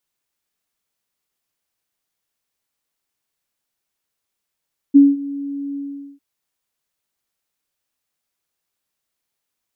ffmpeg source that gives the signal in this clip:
ffmpeg -f lavfi -i "aevalsrc='0.668*sin(2*PI*281*t)':duration=1.251:sample_rate=44100,afade=type=in:duration=0.021,afade=type=out:start_time=0.021:duration=0.2:silence=0.1,afade=type=out:start_time=0.82:duration=0.431" out.wav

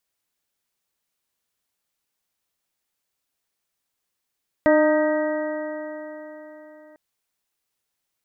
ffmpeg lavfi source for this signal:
ffmpeg -f lavfi -i "aevalsrc='0.133*pow(10,-3*t/4.04)*sin(2*PI*304.39*t)+0.2*pow(10,-3*t/4.04)*sin(2*PI*611.15*t)+0.0531*pow(10,-3*t/4.04)*sin(2*PI*922.61*t)+0.0335*pow(10,-3*t/4.04)*sin(2*PI*1241.04*t)+0.0355*pow(10,-3*t/4.04)*sin(2*PI*1568.62*t)+0.0562*pow(10,-3*t/4.04)*sin(2*PI*1907.45*t)':duration=2.3:sample_rate=44100" out.wav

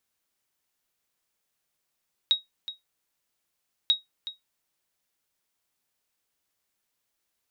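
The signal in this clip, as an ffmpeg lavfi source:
ffmpeg -f lavfi -i "aevalsrc='0.224*(sin(2*PI*3790*mod(t,1.59))*exp(-6.91*mod(t,1.59)/0.16)+0.2*sin(2*PI*3790*max(mod(t,1.59)-0.37,0))*exp(-6.91*max(mod(t,1.59)-0.37,0)/0.16))':duration=3.18:sample_rate=44100" out.wav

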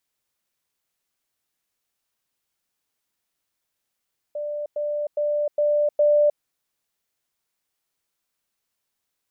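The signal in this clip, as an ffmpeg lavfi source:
ffmpeg -f lavfi -i "aevalsrc='pow(10,(-26+3*floor(t/0.41))/20)*sin(2*PI*591*t)*clip(min(mod(t,0.41),0.31-mod(t,0.41))/0.005,0,1)':duration=2.05:sample_rate=44100" out.wav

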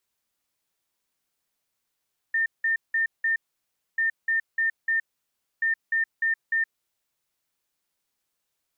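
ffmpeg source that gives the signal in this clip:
ffmpeg -f lavfi -i "aevalsrc='0.0944*sin(2*PI*1810*t)*clip(min(mod(mod(t,1.64),0.3),0.12-mod(mod(t,1.64),0.3))/0.005,0,1)*lt(mod(t,1.64),1.2)':duration=4.92:sample_rate=44100" out.wav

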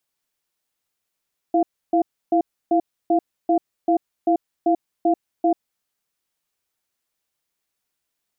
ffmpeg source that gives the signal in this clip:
ffmpeg -f lavfi -i "aevalsrc='0.141*(sin(2*PI*332*t)+sin(2*PI*696*t))*clip(min(mod(t,0.39),0.09-mod(t,0.39))/0.005,0,1)':duration=4.23:sample_rate=44100" out.wav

